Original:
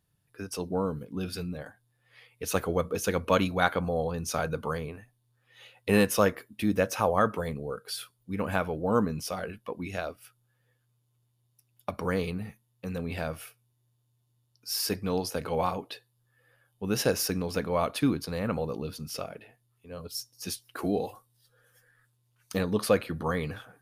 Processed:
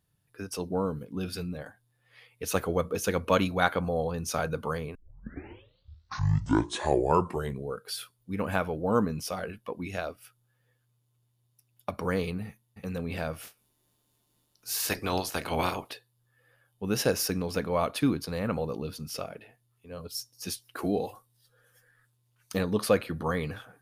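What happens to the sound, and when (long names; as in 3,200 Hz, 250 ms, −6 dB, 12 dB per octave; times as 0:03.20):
0:04.95: tape start 2.80 s
0:12.46–0:12.87: delay throw 300 ms, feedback 10%, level −4.5 dB
0:13.42–0:15.92: ceiling on every frequency bin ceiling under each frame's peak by 18 dB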